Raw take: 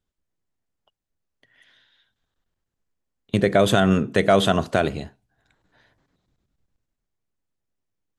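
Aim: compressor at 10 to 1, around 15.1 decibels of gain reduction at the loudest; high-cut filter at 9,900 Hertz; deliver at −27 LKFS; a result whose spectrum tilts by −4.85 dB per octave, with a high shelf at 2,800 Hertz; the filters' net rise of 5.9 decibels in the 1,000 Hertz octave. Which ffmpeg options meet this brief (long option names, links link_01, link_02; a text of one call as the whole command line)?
ffmpeg -i in.wav -af "lowpass=9900,equalizer=frequency=1000:width_type=o:gain=8.5,highshelf=frequency=2800:gain=7.5,acompressor=threshold=-24dB:ratio=10,volume=3.5dB" out.wav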